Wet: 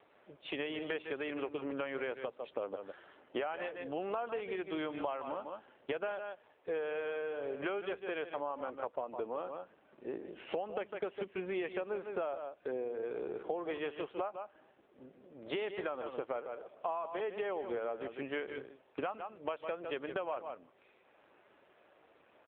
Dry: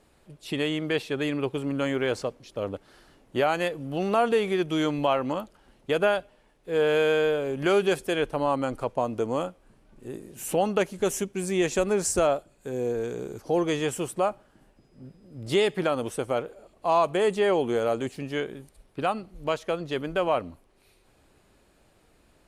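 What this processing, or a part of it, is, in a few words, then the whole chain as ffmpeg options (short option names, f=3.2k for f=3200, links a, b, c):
voicemail: -filter_complex "[0:a]asettb=1/sr,asplit=3[a][b][c];[a]atrim=end=14.054[d];[b]atrim=start=14.05:end=15.63,asetpts=PTS-STARTPTS,afade=t=in:d=0.004:c=qsin,afade=t=out:st=1.576:d=0.004:c=qsin,lowshelf=f=200:g=-4.5[e];[c]atrim=start=15.626[f];[d][e]acrossfade=d=0.004:c1=hsin:c2=qsin[g];[g][f]acrossfade=d=0.004:c1=qsin:c2=hsin,highpass=440,lowpass=2.9k,aecho=1:1:153:0.282,acompressor=threshold=-37dB:ratio=10,volume=3.5dB" -ar 8000 -c:a libopencore_amrnb -b:a 7400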